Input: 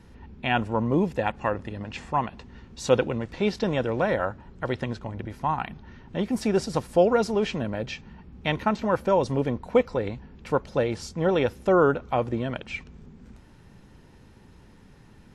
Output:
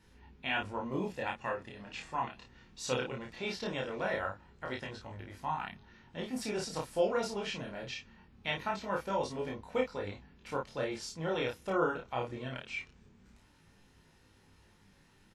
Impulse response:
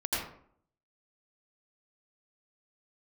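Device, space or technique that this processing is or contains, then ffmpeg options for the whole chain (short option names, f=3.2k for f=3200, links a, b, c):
double-tracked vocal: -filter_complex "[0:a]tiltshelf=f=1.1k:g=-5,asplit=2[a][b];[b]adelay=31,volume=-3dB[c];[a][c]amix=inputs=2:normalize=0,flanger=delay=19:depth=6:speed=0.21,volume=-7dB"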